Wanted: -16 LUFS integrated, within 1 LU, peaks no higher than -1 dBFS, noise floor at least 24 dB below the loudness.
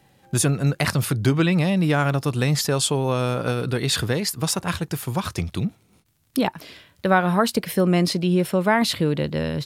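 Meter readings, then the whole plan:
tick rate 40 per s; loudness -22.0 LUFS; peak level -4.5 dBFS; loudness target -16.0 LUFS
-> de-click; trim +6 dB; peak limiter -1 dBFS

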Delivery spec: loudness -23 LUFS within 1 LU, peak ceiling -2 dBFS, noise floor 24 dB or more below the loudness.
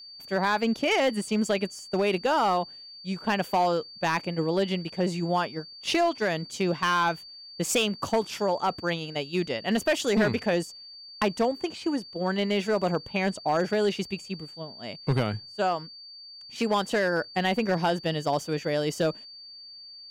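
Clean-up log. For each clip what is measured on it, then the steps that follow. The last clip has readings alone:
clipped samples 0.9%; clipping level -17.5 dBFS; steady tone 4.6 kHz; tone level -43 dBFS; loudness -27.0 LUFS; peak level -17.5 dBFS; loudness target -23.0 LUFS
-> clip repair -17.5 dBFS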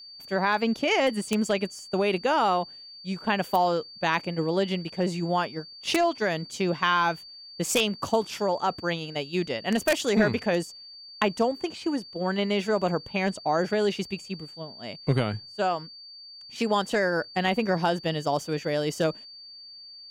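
clipped samples 0.0%; steady tone 4.6 kHz; tone level -43 dBFS
-> band-stop 4.6 kHz, Q 30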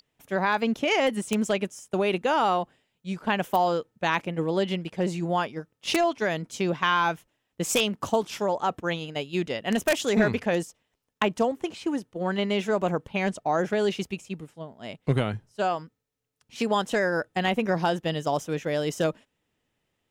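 steady tone not found; loudness -27.0 LUFS; peak level -8.5 dBFS; loudness target -23.0 LUFS
-> trim +4 dB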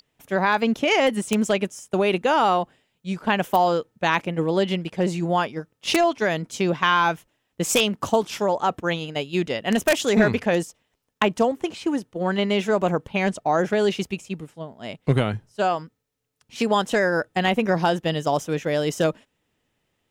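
loudness -23.0 LUFS; peak level -4.5 dBFS; noise floor -74 dBFS

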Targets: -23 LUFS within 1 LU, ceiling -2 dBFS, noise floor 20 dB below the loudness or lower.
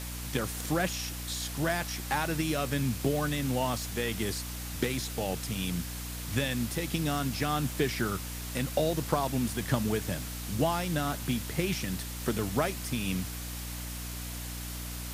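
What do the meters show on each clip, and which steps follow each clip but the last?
hum 60 Hz; highest harmonic 300 Hz; hum level -37 dBFS; noise floor -38 dBFS; noise floor target -52 dBFS; loudness -31.5 LUFS; peak level -11.5 dBFS; loudness target -23.0 LUFS
-> de-hum 60 Hz, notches 5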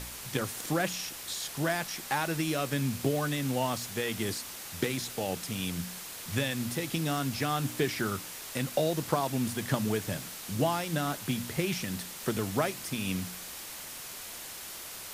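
hum not found; noise floor -43 dBFS; noise floor target -53 dBFS
-> noise reduction 10 dB, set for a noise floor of -43 dBFS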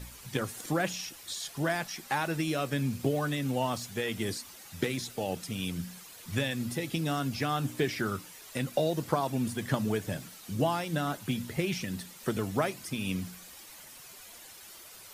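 noise floor -50 dBFS; noise floor target -53 dBFS
-> noise reduction 6 dB, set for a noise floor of -50 dBFS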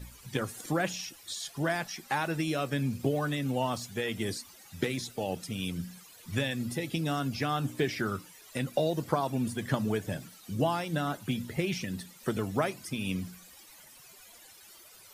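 noise floor -54 dBFS; loudness -32.5 LUFS; peak level -12.0 dBFS; loudness target -23.0 LUFS
-> trim +9.5 dB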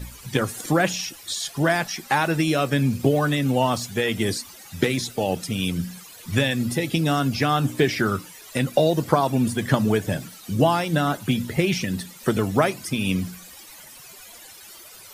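loudness -23.0 LUFS; peak level -2.5 dBFS; noise floor -44 dBFS

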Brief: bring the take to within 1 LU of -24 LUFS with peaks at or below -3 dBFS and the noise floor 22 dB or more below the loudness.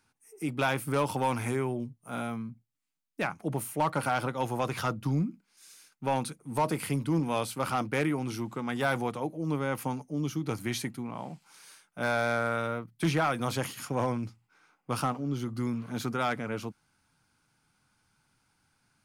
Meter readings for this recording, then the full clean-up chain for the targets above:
clipped samples 0.4%; clipping level -19.5 dBFS; loudness -31.5 LUFS; peak level -19.5 dBFS; loudness target -24.0 LUFS
-> clip repair -19.5 dBFS; trim +7.5 dB

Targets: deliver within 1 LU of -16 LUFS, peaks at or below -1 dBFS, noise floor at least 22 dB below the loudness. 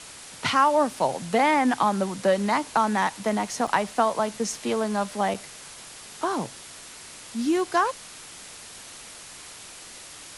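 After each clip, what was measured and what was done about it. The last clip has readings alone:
dropouts 2; longest dropout 4.8 ms; noise floor -44 dBFS; noise floor target -47 dBFS; loudness -24.5 LUFS; peak level -7.5 dBFS; loudness target -16.0 LUFS
-> interpolate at 3.67/5.34 s, 4.8 ms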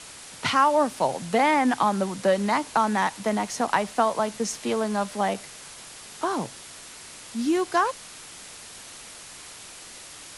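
dropouts 0; noise floor -44 dBFS; noise floor target -47 dBFS
-> noise print and reduce 6 dB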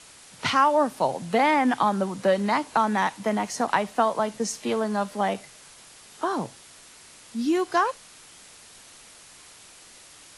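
noise floor -50 dBFS; loudness -24.5 LUFS; peak level -7.5 dBFS; loudness target -16.0 LUFS
-> trim +8.5 dB; peak limiter -1 dBFS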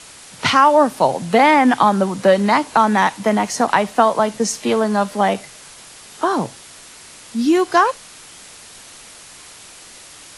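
loudness -16.5 LUFS; peak level -1.0 dBFS; noise floor -41 dBFS

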